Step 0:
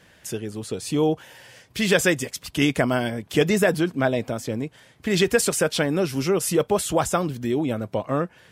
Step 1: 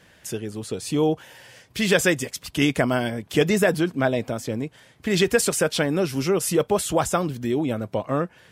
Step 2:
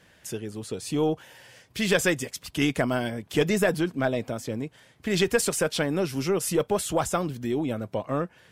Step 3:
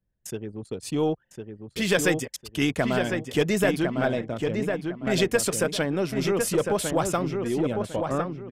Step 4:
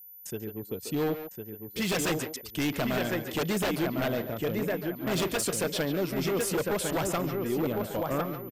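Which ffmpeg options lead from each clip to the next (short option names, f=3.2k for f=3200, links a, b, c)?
-af anull
-af "aeval=exprs='0.531*(cos(1*acos(clip(val(0)/0.531,-1,1)))-cos(1*PI/2))+0.0335*(cos(4*acos(clip(val(0)/0.531,-1,1)))-cos(4*PI/2))+0.00944*(cos(6*acos(clip(val(0)/0.531,-1,1)))-cos(6*PI/2))':c=same,volume=-3.5dB"
-filter_complex "[0:a]anlmdn=1.58,asplit=2[a][b];[b]adelay=1054,lowpass=f=2.4k:p=1,volume=-4.5dB,asplit=2[c][d];[d]adelay=1054,lowpass=f=2.4k:p=1,volume=0.28,asplit=2[e][f];[f]adelay=1054,lowpass=f=2.4k:p=1,volume=0.28,asplit=2[g][h];[h]adelay=1054,lowpass=f=2.4k:p=1,volume=0.28[i];[c][e][g][i]amix=inputs=4:normalize=0[j];[a][j]amix=inputs=2:normalize=0"
-filter_complex "[0:a]aeval=exprs='0.106*(abs(mod(val(0)/0.106+3,4)-2)-1)':c=same,aeval=exprs='val(0)+0.00708*sin(2*PI*14000*n/s)':c=same,asplit=2[a][b];[b]adelay=140,highpass=300,lowpass=3.4k,asoftclip=type=hard:threshold=-27.5dB,volume=-6dB[c];[a][c]amix=inputs=2:normalize=0,volume=-3dB"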